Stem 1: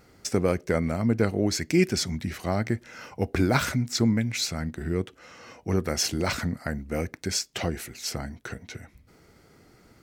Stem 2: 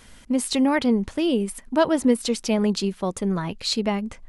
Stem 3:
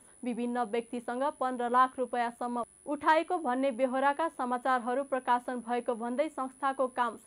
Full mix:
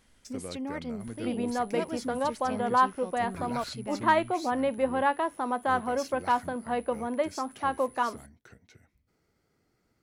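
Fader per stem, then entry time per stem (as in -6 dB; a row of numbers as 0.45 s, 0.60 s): -17.0 dB, -16.0 dB, +2.0 dB; 0.00 s, 0.00 s, 1.00 s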